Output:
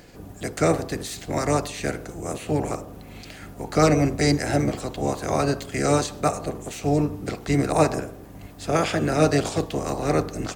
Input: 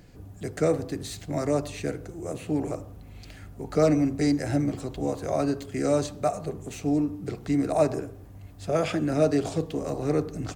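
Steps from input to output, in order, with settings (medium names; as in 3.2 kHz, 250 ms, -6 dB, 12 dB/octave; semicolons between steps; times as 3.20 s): spectral peaks clipped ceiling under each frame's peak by 13 dB; trim +3.5 dB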